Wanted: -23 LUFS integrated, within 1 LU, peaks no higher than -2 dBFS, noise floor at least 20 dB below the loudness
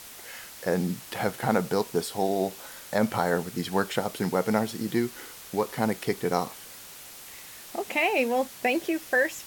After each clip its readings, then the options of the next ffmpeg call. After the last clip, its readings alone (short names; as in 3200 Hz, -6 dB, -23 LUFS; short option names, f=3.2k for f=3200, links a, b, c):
noise floor -45 dBFS; noise floor target -48 dBFS; loudness -28.0 LUFS; peak -9.0 dBFS; loudness target -23.0 LUFS
-> -af "afftdn=nr=6:nf=-45"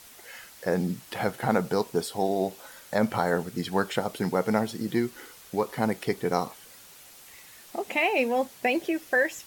noise floor -50 dBFS; loudness -28.0 LUFS; peak -9.5 dBFS; loudness target -23.0 LUFS
-> -af "volume=5dB"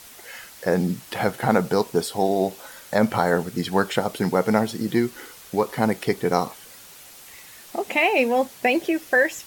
loudness -23.0 LUFS; peak -4.5 dBFS; noise floor -45 dBFS